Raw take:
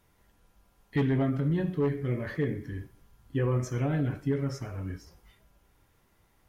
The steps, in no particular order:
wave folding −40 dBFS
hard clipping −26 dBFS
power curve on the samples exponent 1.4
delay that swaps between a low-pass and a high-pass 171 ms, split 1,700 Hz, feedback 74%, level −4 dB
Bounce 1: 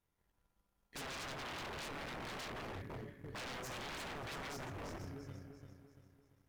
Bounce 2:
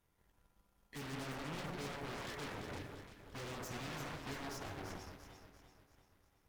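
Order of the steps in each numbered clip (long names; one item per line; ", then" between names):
delay that swaps between a low-pass and a high-pass, then power curve on the samples, then wave folding, then hard clipping
hard clipping, then wave folding, then delay that swaps between a low-pass and a high-pass, then power curve on the samples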